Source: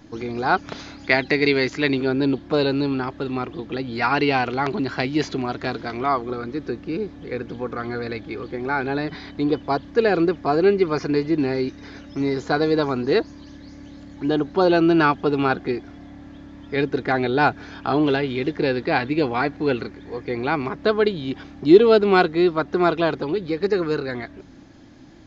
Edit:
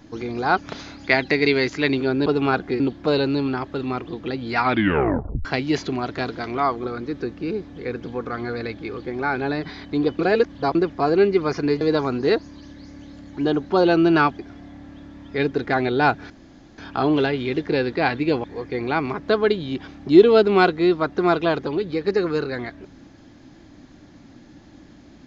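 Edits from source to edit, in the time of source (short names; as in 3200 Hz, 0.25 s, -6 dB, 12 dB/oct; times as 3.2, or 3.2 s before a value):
4.06 tape stop 0.85 s
9.65–10.21 reverse
11.27–12.65 cut
15.23–15.77 move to 2.26
17.68 insert room tone 0.48 s
19.34–20 cut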